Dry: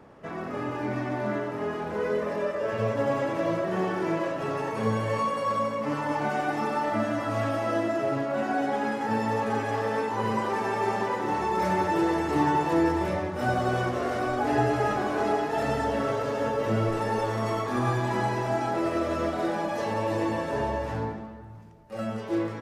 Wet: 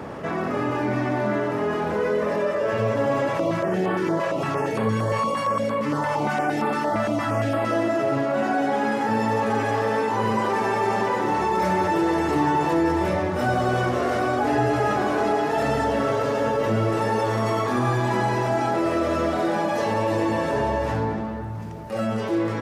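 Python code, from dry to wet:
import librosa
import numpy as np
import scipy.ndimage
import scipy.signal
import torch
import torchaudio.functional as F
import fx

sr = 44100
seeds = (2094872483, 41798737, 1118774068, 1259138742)

y = fx.filter_held_notch(x, sr, hz=8.7, low_hz=300.0, high_hz=5900.0, at=(3.28, 7.71))
y = scipy.signal.sosfilt(scipy.signal.butter(2, 52.0, 'highpass', fs=sr, output='sos'), y)
y = fx.env_flatten(y, sr, amount_pct=50)
y = F.gain(torch.from_numpy(y), 1.5).numpy()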